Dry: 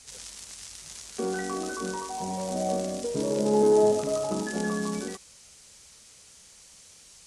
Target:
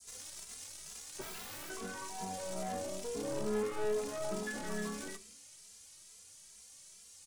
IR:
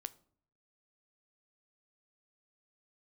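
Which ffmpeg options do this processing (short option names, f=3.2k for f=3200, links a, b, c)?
-filter_complex "[0:a]adynamicequalizer=threshold=0.00501:dfrequency=2300:dqfactor=0.93:tfrequency=2300:tqfactor=0.93:attack=5:release=100:ratio=0.375:range=3:mode=boostabove:tftype=bell,acrossover=split=160|650|3600[a][b][c][d];[d]alimiter=level_in=4dB:limit=-24dB:level=0:latency=1:release=91,volume=-4dB[e];[a][b][c][e]amix=inputs=4:normalize=0,crystalizer=i=1.5:c=0,aeval=exprs='(tanh(22.4*val(0)+0.55)-tanh(0.55))/22.4':c=same,asettb=1/sr,asplit=3[f][g][h];[f]atrim=end=1.214[i];[g]atrim=start=1.21:end=1.7,asetpts=PTS-STARTPTS,afade=t=in:d=0.004:c=qsin,afade=t=out:st=0.486:d=0.004:c=qsin,aeval=exprs='(mod(53.1*val(0)+1,2)-1)/53.1':c=same[j];[h]atrim=start=1.696[k];[i][j]acrossfade=d=0.004:c1=hsin:c2=qsin[l];[l][k]acrossfade=d=0.004:c1=qsin:c2=hsin[m];[1:a]atrim=start_sample=2205[n];[m][n]afir=irnorm=-1:irlink=0,asplit=2[o][p];[p]adelay=2.6,afreqshift=2.3[q];[o][q]amix=inputs=2:normalize=1,volume=-1dB"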